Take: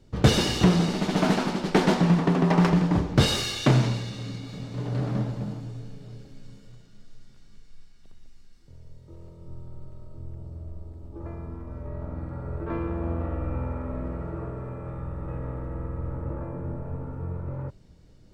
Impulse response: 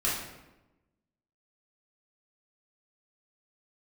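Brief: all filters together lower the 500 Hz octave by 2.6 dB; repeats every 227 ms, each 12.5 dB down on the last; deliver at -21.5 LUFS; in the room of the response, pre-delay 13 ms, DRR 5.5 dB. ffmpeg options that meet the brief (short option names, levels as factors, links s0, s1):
-filter_complex "[0:a]equalizer=f=500:t=o:g=-3.5,aecho=1:1:227|454|681:0.237|0.0569|0.0137,asplit=2[s0][s1];[1:a]atrim=start_sample=2205,adelay=13[s2];[s1][s2]afir=irnorm=-1:irlink=0,volume=0.178[s3];[s0][s3]amix=inputs=2:normalize=0,volume=1.68"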